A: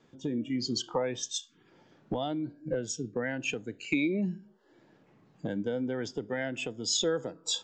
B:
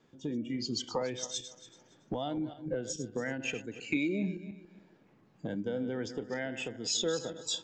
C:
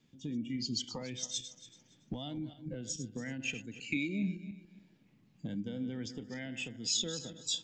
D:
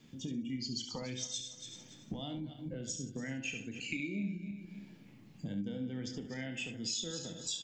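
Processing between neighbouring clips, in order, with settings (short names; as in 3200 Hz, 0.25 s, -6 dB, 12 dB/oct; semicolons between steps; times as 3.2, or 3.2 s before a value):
regenerating reverse delay 0.141 s, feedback 48%, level -11 dB; gain -3 dB
band shelf 760 Hz -11.5 dB 2.6 oct
notch 3800 Hz, Q 28; compressor 2.5:1, threshold -52 dBFS, peak gain reduction 15 dB; on a send: early reflections 30 ms -10.5 dB, 70 ms -9 dB; on the sum: gain +9 dB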